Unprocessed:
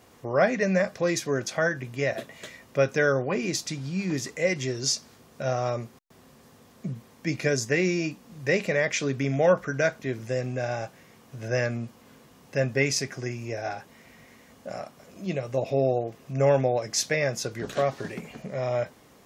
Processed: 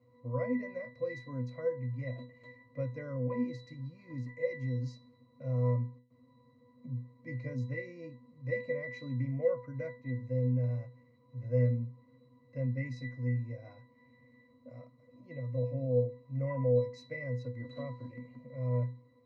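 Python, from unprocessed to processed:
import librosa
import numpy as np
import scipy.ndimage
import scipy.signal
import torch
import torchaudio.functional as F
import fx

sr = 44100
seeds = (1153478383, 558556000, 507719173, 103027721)

y = fx.octave_resonator(x, sr, note='B', decay_s=0.37)
y = y * librosa.db_to_amplitude(6.0)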